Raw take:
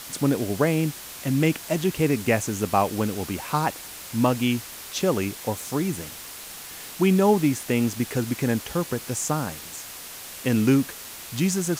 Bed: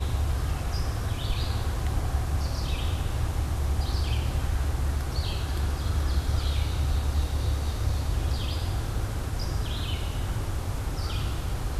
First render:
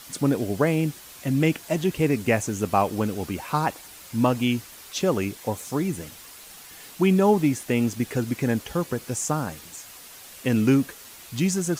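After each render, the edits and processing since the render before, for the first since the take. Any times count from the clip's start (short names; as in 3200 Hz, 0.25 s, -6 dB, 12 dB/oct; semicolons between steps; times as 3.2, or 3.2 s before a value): denoiser 7 dB, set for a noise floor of -40 dBFS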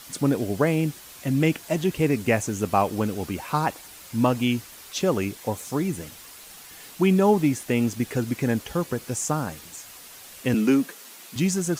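10.54–11.36 steep high-pass 170 Hz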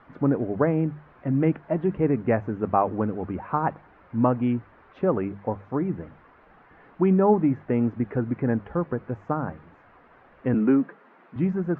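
LPF 1600 Hz 24 dB/oct; notches 50/100/150/200 Hz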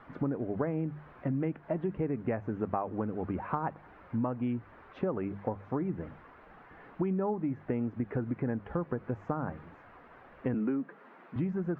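compressor 6:1, threshold -29 dBFS, peak gain reduction 14.5 dB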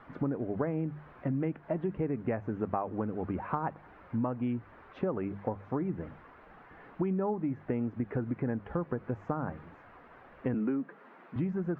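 nothing audible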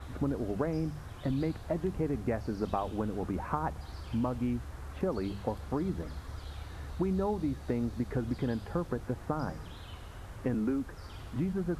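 add bed -16.5 dB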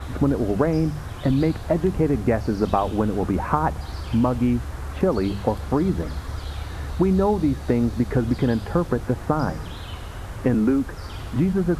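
gain +11.5 dB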